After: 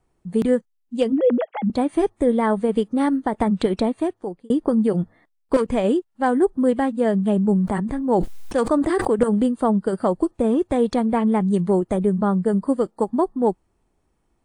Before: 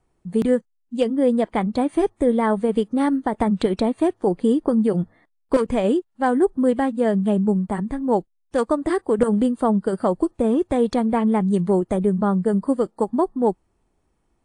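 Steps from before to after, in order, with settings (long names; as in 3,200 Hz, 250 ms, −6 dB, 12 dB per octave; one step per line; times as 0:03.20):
0:01.12–0:01.70: three sine waves on the formant tracks
0:03.83–0:04.50: fade out
0:07.31–0:09.12: level that may fall only so fast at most 26 dB per second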